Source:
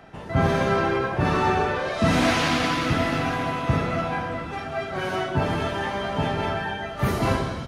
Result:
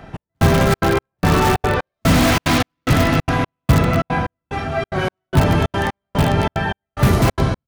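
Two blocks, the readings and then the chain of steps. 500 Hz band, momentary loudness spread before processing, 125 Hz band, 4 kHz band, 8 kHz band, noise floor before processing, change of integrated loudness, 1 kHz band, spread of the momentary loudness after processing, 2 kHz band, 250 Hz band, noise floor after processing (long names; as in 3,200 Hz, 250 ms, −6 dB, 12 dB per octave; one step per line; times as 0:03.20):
+4.5 dB, 7 LU, +9.0 dB, +5.0 dB, +9.0 dB, −34 dBFS, +6.0 dB, +4.0 dB, 8 LU, +4.0 dB, +6.5 dB, −83 dBFS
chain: in parallel at −4 dB: wrap-around overflow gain 16 dB
on the sum: low-shelf EQ 170 Hz +9.5 dB
gate pattern "xx...xxxx." 183 BPM −60 dB
level +2 dB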